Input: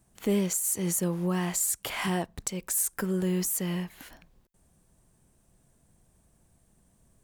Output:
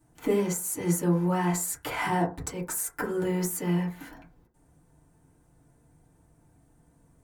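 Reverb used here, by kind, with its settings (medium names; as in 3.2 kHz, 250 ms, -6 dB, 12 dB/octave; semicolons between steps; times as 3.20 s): FDN reverb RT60 0.31 s, low-frequency decay 1×, high-frequency decay 0.25×, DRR -8.5 dB; trim -5.5 dB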